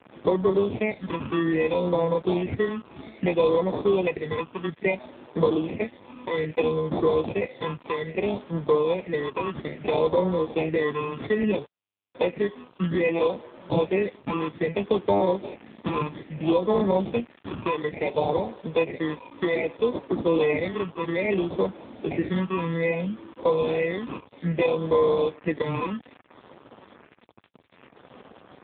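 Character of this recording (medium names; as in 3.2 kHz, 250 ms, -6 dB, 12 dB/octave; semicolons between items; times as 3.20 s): aliases and images of a low sample rate 1.5 kHz, jitter 0%; phasing stages 12, 0.61 Hz, lowest notch 660–2500 Hz; a quantiser's noise floor 8-bit, dither none; AMR-NB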